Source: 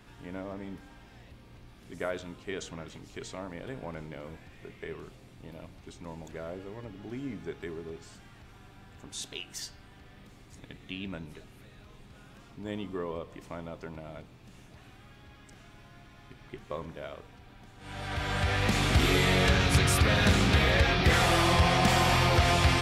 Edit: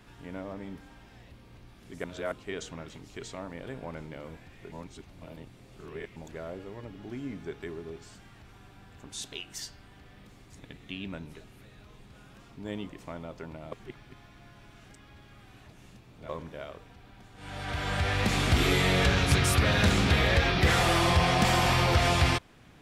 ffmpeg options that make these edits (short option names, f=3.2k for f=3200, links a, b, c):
-filter_complex "[0:a]asplit=8[a][b][c][d][e][f][g][h];[a]atrim=end=2.042[i];[b]atrim=start=2.038:end=2.322,asetpts=PTS-STARTPTS,areverse[j];[c]atrim=start=2.318:end=4.722[k];[d]atrim=start=4.718:end=6.162,asetpts=PTS-STARTPTS,areverse[l];[e]atrim=start=6.158:end=12.892[m];[f]atrim=start=13.318:end=14.152[n];[g]atrim=start=14.148:end=16.722,asetpts=PTS-STARTPTS,areverse[o];[h]atrim=start=16.718[p];[i][j]acrossfade=d=0.004:c1=hsin:c2=hsin[q];[q][k]acrossfade=d=0.004:c1=hsin:c2=hsin[r];[r][l]acrossfade=d=0.004:c1=hsin:c2=hsin[s];[s][m]acrossfade=d=0.004:c1=hsin:c2=hsin[t];[t][n]acrossfade=d=0.004:c1=hsin:c2=hsin[u];[u][o]acrossfade=d=0.004:c1=hsin:c2=hsin[v];[v][p]acrossfade=d=0.004:c1=hsin:c2=hsin"